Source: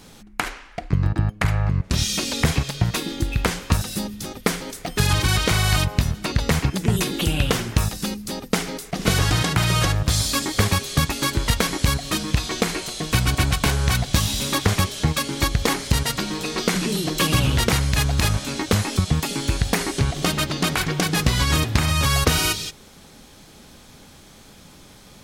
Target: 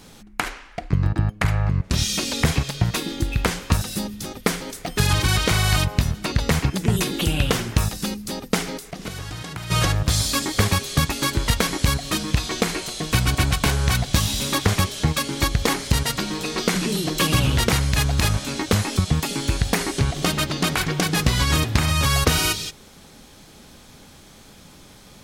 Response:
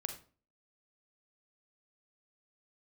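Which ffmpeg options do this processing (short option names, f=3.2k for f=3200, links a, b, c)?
-filter_complex "[0:a]asplit=3[a][b][c];[a]afade=t=out:st=8.78:d=0.02[d];[b]acompressor=threshold=-32dB:ratio=4,afade=t=in:st=8.78:d=0.02,afade=t=out:st=9.7:d=0.02[e];[c]afade=t=in:st=9.7:d=0.02[f];[d][e][f]amix=inputs=3:normalize=0"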